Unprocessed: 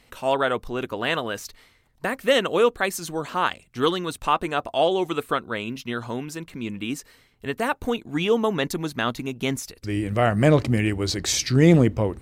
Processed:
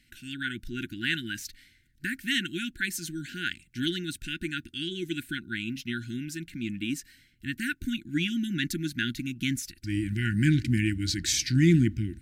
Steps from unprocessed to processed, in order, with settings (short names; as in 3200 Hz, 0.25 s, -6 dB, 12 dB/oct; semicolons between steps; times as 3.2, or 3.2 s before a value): AGC gain up to 4 dB; brick-wall FIR band-stop 360–1400 Hz; gain -6 dB